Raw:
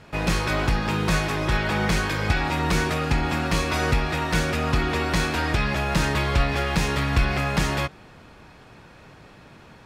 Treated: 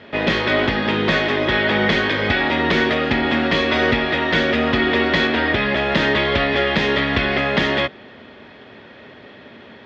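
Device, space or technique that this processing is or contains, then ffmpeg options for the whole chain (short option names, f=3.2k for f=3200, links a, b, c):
guitar cabinet: -filter_complex "[0:a]highpass=100,equalizer=f=150:t=q:w=4:g=-7,equalizer=f=240:t=q:w=4:g=10,equalizer=f=400:t=q:w=4:g=8,equalizer=f=590:t=q:w=4:g=8,equalizer=f=1.9k:t=q:w=4:g=10,equalizer=f=3.3k:t=q:w=4:g=10,lowpass=f=4.6k:w=0.5412,lowpass=f=4.6k:w=1.3066,asettb=1/sr,asplit=3[a][b][c];[a]atrim=end=5.274[d];[b]atrim=start=5.27:end=5.77,asetpts=PTS-STARTPTS,afade=t=in:d=0.004:c=qsin,afade=t=out:st=0.496:d=0.004:c=qsin,highshelf=f=7.5k:g=-10.5[e];[c]atrim=start=5.766[f];[d][e]acrossfade=d=0.004:c1=hsin:c2=qsin[g];[g][f]acrossfade=d=0.004:c1=qsin:c2=hsin,volume=2dB"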